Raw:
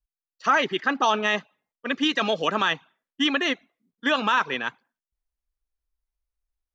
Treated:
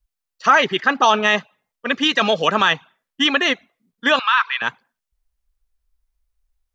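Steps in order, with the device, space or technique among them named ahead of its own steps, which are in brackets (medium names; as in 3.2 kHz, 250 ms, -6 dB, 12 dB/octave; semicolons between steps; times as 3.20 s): low shelf boost with a cut just above (bass shelf 67 Hz +7.5 dB; peaking EQ 300 Hz -5.5 dB 0.67 oct); 4.19–4.62 s: Chebyshev band-pass 1.1–4.6 kHz, order 3; trim +7 dB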